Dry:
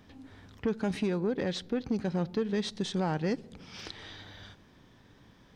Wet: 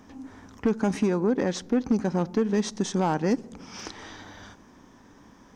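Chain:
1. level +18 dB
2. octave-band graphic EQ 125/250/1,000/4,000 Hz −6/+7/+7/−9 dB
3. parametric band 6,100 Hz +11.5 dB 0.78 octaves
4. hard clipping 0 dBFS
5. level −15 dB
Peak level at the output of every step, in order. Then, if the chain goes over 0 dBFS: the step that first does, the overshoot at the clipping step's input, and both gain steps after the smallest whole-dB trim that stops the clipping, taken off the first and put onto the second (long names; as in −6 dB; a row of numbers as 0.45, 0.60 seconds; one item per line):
−2.5, +4.0, +4.0, 0.0, −15.0 dBFS
step 2, 4.0 dB
step 1 +14 dB, step 5 −11 dB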